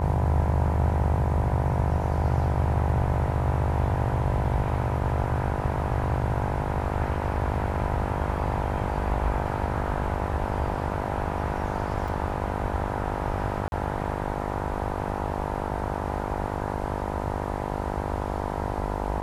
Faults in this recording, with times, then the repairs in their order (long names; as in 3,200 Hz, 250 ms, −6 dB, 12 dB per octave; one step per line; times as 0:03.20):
mains buzz 50 Hz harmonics 20 −31 dBFS
0:12.08: drop-out 3.3 ms
0:13.68–0:13.72: drop-out 41 ms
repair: hum removal 50 Hz, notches 20
repair the gap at 0:12.08, 3.3 ms
repair the gap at 0:13.68, 41 ms